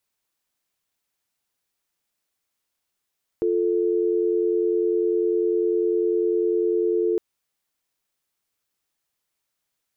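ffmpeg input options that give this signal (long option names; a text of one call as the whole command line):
ffmpeg -f lavfi -i "aevalsrc='0.0841*(sin(2*PI*350*t)+sin(2*PI*440*t))':duration=3.76:sample_rate=44100" out.wav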